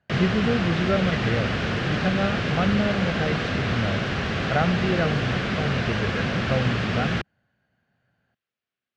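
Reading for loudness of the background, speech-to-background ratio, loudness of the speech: -25.5 LUFS, -1.5 dB, -27.0 LUFS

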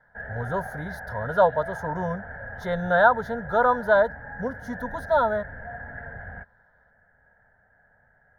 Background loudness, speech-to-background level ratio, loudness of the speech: -38.0 LUFS, 13.5 dB, -24.5 LUFS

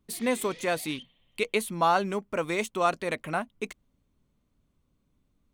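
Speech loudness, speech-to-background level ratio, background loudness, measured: -29.0 LUFS, 18.5 dB, -47.5 LUFS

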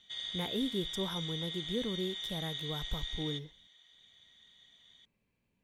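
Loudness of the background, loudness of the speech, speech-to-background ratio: -38.5 LUFS, -39.0 LUFS, -0.5 dB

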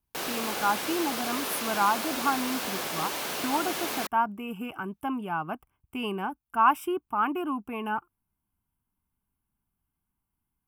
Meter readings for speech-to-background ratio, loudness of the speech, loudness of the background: 1.5 dB, -30.0 LUFS, -31.5 LUFS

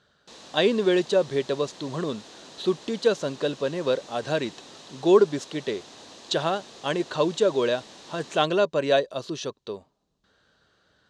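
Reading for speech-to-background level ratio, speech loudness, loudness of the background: 19.5 dB, -25.5 LUFS, -45.0 LUFS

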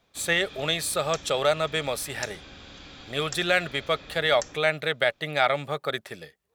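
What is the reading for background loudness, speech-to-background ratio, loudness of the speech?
-42.5 LUFS, 16.5 dB, -26.0 LUFS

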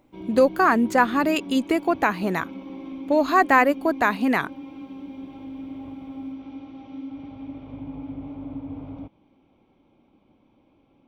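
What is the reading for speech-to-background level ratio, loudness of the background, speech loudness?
16.5 dB, -37.5 LUFS, -21.0 LUFS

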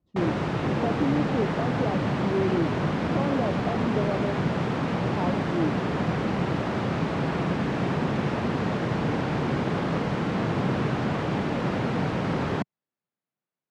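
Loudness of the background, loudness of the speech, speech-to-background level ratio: -27.0 LUFS, -31.0 LUFS, -4.0 dB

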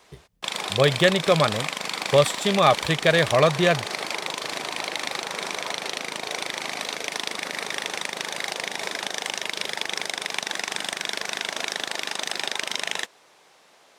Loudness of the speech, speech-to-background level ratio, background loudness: -20.5 LUFS, 8.0 dB, -28.5 LUFS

